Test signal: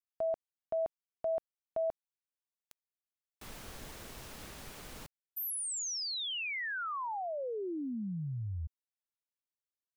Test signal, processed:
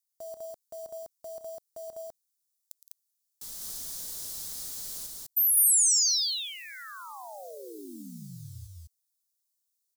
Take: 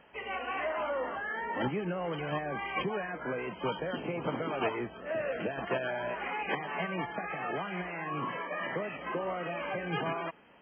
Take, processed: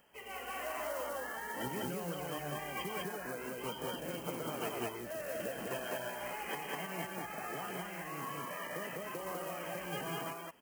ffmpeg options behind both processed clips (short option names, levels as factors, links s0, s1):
-af "acrusher=bits=8:mode=log:mix=0:aa=0.000001,aexciter=amount=10.8:drive=3.5:freq=3800,aecho=1:1:113.7|166.2|201.2:0.251|0.251|0.891,volume=0.355"